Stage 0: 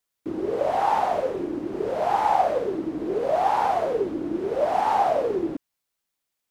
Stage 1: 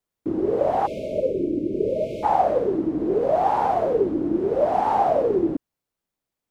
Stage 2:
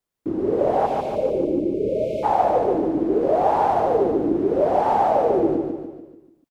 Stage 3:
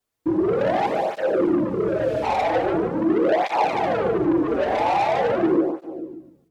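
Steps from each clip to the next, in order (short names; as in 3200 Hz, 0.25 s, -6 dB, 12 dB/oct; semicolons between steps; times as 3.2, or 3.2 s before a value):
spectral delete 0.86–2.24, 660–2100 Hz; tilt shelf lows +6.5 dB, about 940 Hz
feedback echo 0.146 s, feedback 49%, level -4 dB
soft clip -22.5 dBFS, distortion -9 dB; reverb RT60 0.45 s, pre-delay 6 ms, DRR 8.5 dB; tape flanging out of phase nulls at 0.43 Hz, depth 6.2 ms; gain +6.5 dB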